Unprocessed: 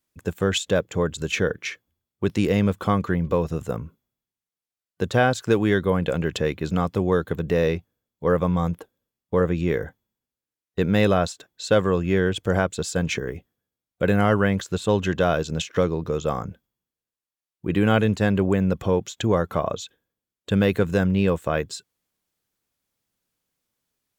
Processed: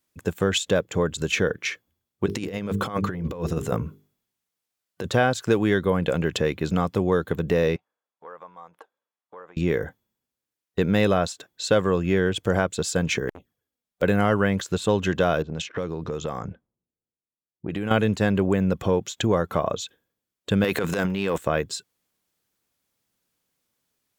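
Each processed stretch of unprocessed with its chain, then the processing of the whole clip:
2.26–5.05 notches 50/100/150/200/250/300/350/400/450 Hz + negative-ratio compressor -27 dBFS, ratio -0.5
7.76–9.57 compressor 4:1, threshold -35 dBFS + band-pass 950 Hz, Q 1.4 + tilt +2.5 dB/oct
13.29–14.02 envelope flanger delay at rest 5.5 ms, full sweep at -33.5 dBFS + wrapped overs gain 26 dB + core saturation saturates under 860 Hz
15.42–17.91 low-pass opened by the level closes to 420 Hz, open at -20.5 dBFS + compressor 4:1, threshold -28 dBFS
20.64–21.38 HPF 480 Hz 6 dB/oct + transient shaper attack -8 dB, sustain +11 dB
whole clip: low shelf 66 Hz -7 dB; compressor 1.5:1, threshold -25 dBFS; gain +3 dB

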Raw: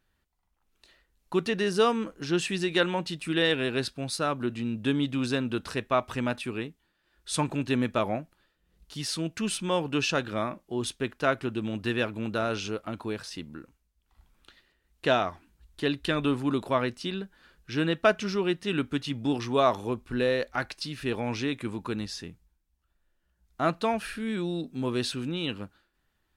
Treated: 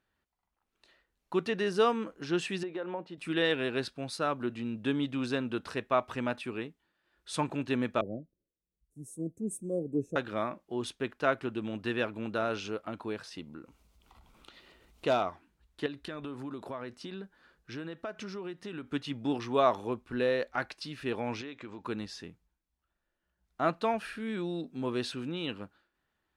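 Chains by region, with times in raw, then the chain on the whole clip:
2.63–3.18 compressor 12:1, threshold -25 dBFS + band-pass 520 Hz, Q 0.78
8.01–10.16 inverse Chebyshev band-stop 900–4900 Hz + three-band expander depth 70%
13.38–15.29 bell 1700 Hz -12 dB 0.26 oct + upward compressor, threshold -37 dBFS + hard clip -18 dBFS
15.86–18.89 bell 2800 Hz -3.5 dB 0.78 oct + compressor 8:1, threshold -32 dBFS
21.41–21.84 steep low-pass 7200 Hz 48 dB/oct + bell 150 Hz -6 dB 1.5 oct + compressor 4:1, threshold -36 dBFS
whole clip: HPF 780 Hz 6 dB/oct; tilt -3 dB/oct

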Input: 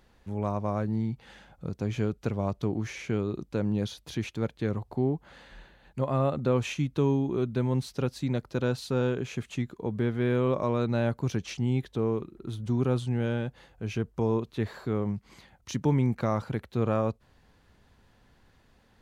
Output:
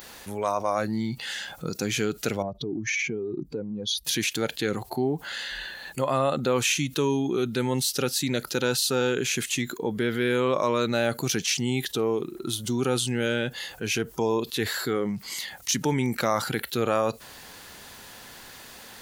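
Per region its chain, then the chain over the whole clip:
2.42–4.05 spectral contrast raised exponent 1.7 + notch 620 Hz, Q 7.3 + compressor 2.5:1, threshold -33 dBFS
whole clip: RIAA curve recording; spectral noise reduction 10 dB; fast leveller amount 50%; gain +4.5 dB

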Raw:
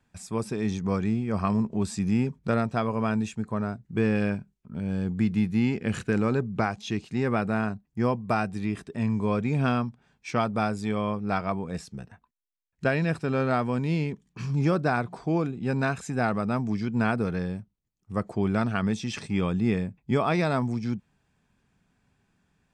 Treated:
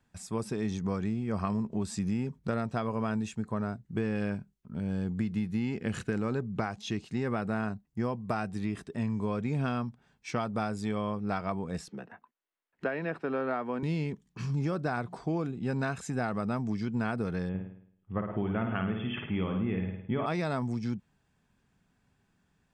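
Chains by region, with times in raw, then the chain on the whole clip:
11.88–13.83 three-band isolator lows -22 dB, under 220 Hz, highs -22 dB, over 3000 Hz + three-band squash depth 40%
17.49–20.26 brick-wall FIR low-pass 3500 Hz + flutter echo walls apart 9.2 m, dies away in 0.62 s
whole clip: notch 2400 Hz, Q 19; compressor, threshold -25 dBFS; gain -2 dB

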